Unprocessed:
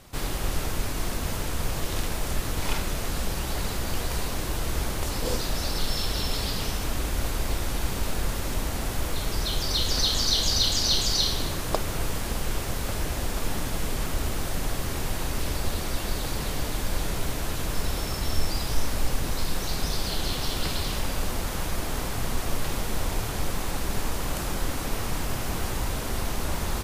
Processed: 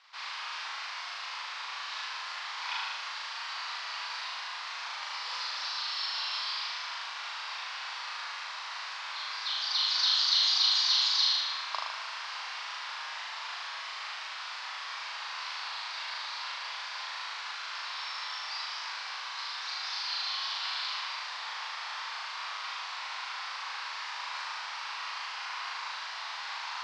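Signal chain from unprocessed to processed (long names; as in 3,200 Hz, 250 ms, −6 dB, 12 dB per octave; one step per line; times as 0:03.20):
elliptic band-pass filter 970–4,900 Hz, stop band 60 dB
flutter between parallel walls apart 6.6 metres, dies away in 1 s
level −3.5 dB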